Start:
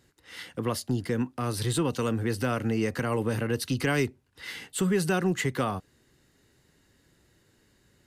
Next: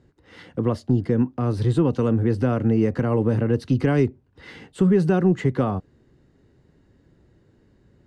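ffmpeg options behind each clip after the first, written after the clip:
-af "lowpass=6600,tiltshelf=f=1200:g=9"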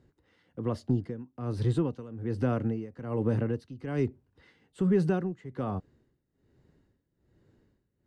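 -af "tremolo=f=1.2:d=0.87,volume=0.501"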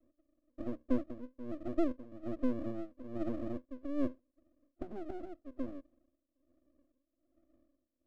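-af "asuperpass=centerf=290:order=8:qfactor=2.8,aeval=exprs='max(val(0),0)':c=same,volume=1.78"

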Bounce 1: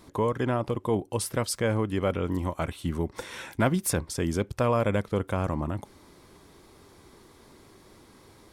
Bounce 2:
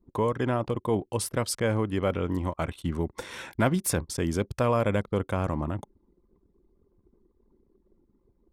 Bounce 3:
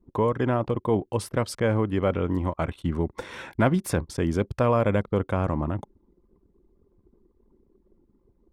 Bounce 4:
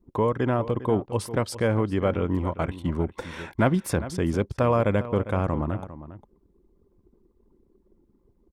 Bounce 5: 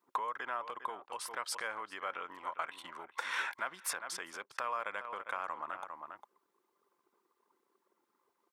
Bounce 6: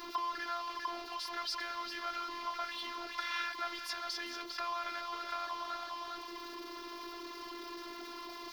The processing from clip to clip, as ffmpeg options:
-af "anlmdn=0.0631"
-af "highshelf=f=4100:g=-11.5,volume=1.41"
-filter_complex "[0:a]asplit=2[s0][s1];[s1]adelay=402.3,volume=0.2,highshelf=f=4000:g=-9.05[s2];[s0][s2]amix=inputs=2:normalize=0"
-af "alimiter=limit=0.126:level=0:latency=1:release=248,acompressor=threshold=0.0178:ratio=3,highpass=f=1200:t=q:w=1.6,volume=1.58"
-af "aeval=exprs='val(0)+0.5*0.0178*sgn(val(0))':c=same,afftfilt=real='hypot(re,im)*cos(PI*b)':imag='0':win_size=512:overlap=0.75,highshelf=f=6300:t=q:w=3:g=-9.5,volume=0.841"

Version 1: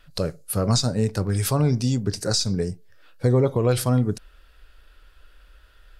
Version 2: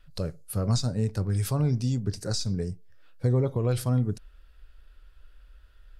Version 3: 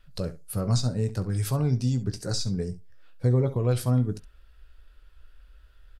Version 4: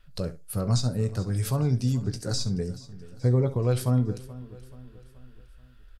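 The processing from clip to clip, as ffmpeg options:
-af "lowshelf=f=160:g=9.5,volume=0.355"
-af "aecho=1:1:16|67:0.282|0.168"
-af "aecho=1:1:429|858|1287|1716:0.126|0.0617|0.0302|0.0148"

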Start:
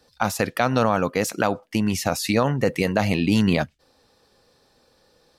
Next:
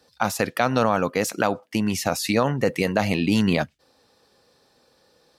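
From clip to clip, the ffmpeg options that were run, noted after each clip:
-af "highpass=f=110:p=1"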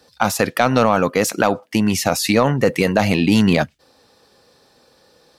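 -af "acontrast=63"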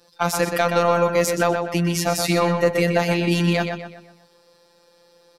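-filter_complex "[0:a]afftfilt=real='hypot(re,im)*cos(PI*b)':imag='0':win_size=1024:overlap=0.75,asplit=2[s0][s1];[s1]adelay=124,lowpass=f=4500:p=1,volume=0.531,asplit=2[s2][s3];[s3]adelay=124,lowpass=f=4500:p=1,volume=0.43,asplit=2[s4][s5];[s5]adelay=124,lowpass=f=4500:p=1,volume=0.43,asplit=2[s6][s7];[s7]adelay=124,lowpass=f=4500:p=1,volume=0.43,asplit=2[s8][s9];[s9]adelay=124,lowpass=f=4500:p=1,volume=0.43[s10];[s2][s4][s6][s8][s10]amix=inputs=5:normalize=0[s11];[s0][s11]amix=inputs=2:normalize=0"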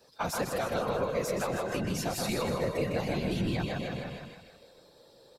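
-af "aecho=1:1:157|314|471|628|785|942|1099:0.562|0.292|0.152|0.0791|0.0411|0.0214|0.0111,afftfilt=real='hypot(re,im)*cos(2*PI*random(0))':imag='hypot(re,im)*sin(2*PI*random(1))':win_size=512:overlap=0.75,acompressor=threshold=0.02:ratio=2.5,volume=1.19"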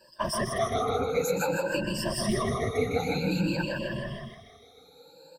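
-af "afftfilt=real='re*pow(10,24/40*sin(2*PI*(1.3*log(max(b,1)*sr/1024/100)/log(2)-(0.53)*(pts-256)/sr)))':imag='im*pow(10,24/40*sin(2*PI*(1.3*log(max(b,1)*sr/1024/100)/log(2)-(0.53)*(pts-256)/sr)))':win_size=1024:overlap=0.75,volume=0.75"

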